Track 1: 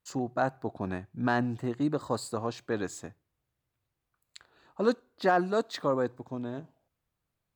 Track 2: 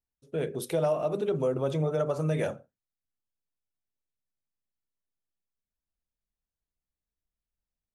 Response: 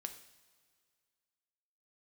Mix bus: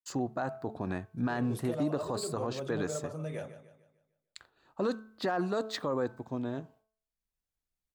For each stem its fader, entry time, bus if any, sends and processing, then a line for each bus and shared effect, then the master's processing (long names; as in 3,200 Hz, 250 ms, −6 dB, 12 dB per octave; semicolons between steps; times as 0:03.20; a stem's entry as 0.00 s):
+1.0 dB, 0.00 s, no send, no echo send, downward expander −56 dBFS
0.0 dB, 0.95 s, no send, echo send −22.5 dB, automatic ducking −10 dB, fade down 1.85 s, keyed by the first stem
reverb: not used
echo: repeating echo 149 ms, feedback 41%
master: hum removal 218.7 Hz, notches 7; brickwall limiter −22 dBFS, peak gain reduction 9.5 dB